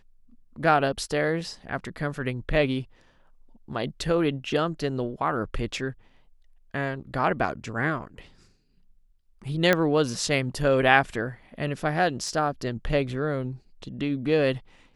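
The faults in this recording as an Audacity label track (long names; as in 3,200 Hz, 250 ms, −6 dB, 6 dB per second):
9.730000	9.730000	click −7 dBFS
12.280000	12.280000	drop-out 2.6 ms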